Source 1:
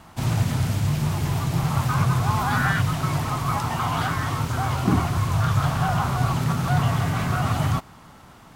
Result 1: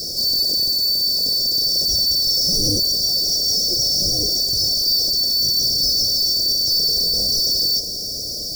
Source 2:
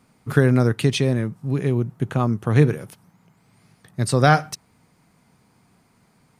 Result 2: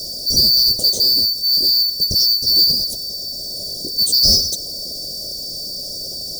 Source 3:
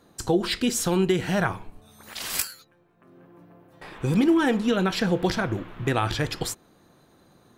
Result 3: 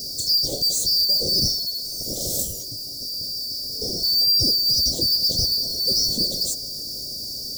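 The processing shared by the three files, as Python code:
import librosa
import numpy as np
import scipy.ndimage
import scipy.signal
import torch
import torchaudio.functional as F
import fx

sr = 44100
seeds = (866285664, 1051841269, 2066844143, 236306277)

y = fx.band_shuffle(x, sr, order='2341')
y = fx.power_curve(y, sr, exponent=0.35)
y = fx.peak_eq(y, sr, hz=11000.0, db=-7.5, octaves=0.5)
y = fx.quant_dither(y, sr, seeds[0], bits=6, dither='triangular')
y = scipy.signal.sosfilt(scipy.signal.ellip(3, 1.0, 40, [580.0, 4700.0], 'bandstop', fs=sr, output='sos'), y)
y = F.gain(torch.from_numpy(y), -3.5).numpy()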